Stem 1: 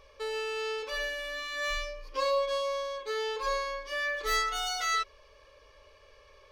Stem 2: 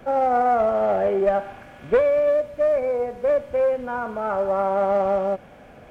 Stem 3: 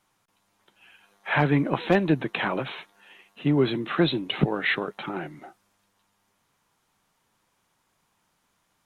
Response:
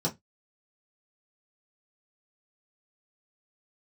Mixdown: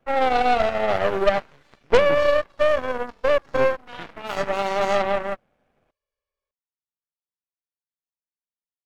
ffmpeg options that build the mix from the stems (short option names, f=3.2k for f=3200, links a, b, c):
-filter_complex "[0:a]volume=-9.5dB[a];[1:a]volume=0.5dB[b];[2:a]lowpass=1.9k,volume=-15.5dB[c];[a][b][c]amix=inputs=3:normalize=0,aeval=exprs='0.398*(cos(1*acos(clip(val(0)/0.398,-1,1)))-cos(1*PI/2))+0.2*(cos(2*acos(clip(val(0)/0.398,-1,1)))-cos(2*PI/2))+0.0141*(cos(5*acos(clip(val(0)/0.398,-1,1)))-cos(5*PI/2))+0.0112*(cos(6*acos(clip(val(0)/0.398,-1,1)))-cos(6*PI/2))+0.0708*(cos(7*acos(clip(val(0)/0.398,-1,1)))-cos(7*PI/2))':c=same"